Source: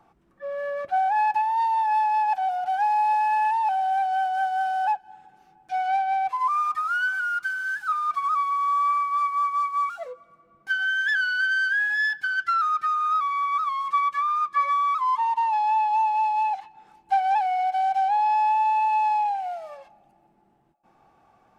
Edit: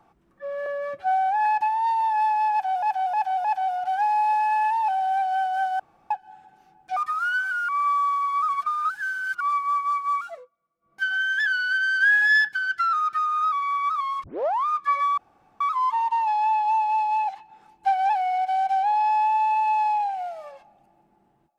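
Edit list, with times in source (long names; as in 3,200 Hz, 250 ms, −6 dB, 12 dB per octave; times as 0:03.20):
0:00.66–0:01.19: time-stretch 1.5×
0:02.25–0:02.56: repeat, 4 plays
0:04.60–0:04.91: fill with room tone
0:05.77–0:06.65: remove
0:07.37–0:09.09: reverse
0:09.94–0:10.73: duck −23 dB, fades 0.24 s
0:11.69–0:12.17: clip gain +5.5 dB
0:13.92: tape start 0.42 s
0:14.86: splice in room tone 0.43 s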